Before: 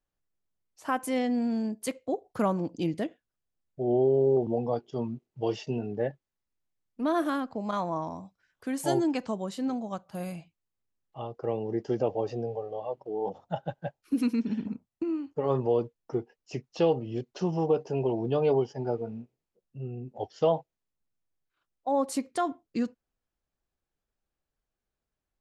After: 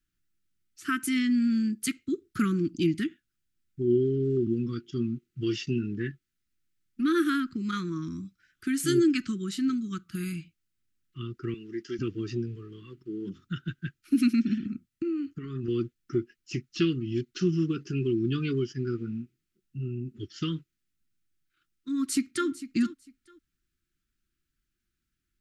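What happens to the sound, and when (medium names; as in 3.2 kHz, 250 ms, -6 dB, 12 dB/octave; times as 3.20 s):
11.54–11.99 s: high-pass 1 kHz 6 dB/octave
14.56–15.68 s: compression, threshold -32 dBFS
21.95–22.48 s: echo throw 450 ms, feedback 20%, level -15 dB
whole clip: Chebyshev band-stop 360–1300 Hz, order 4; dynamic bell 160 Hz, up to -3 dB, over -38 dBFS, Q 0.72; trim +6.5 dB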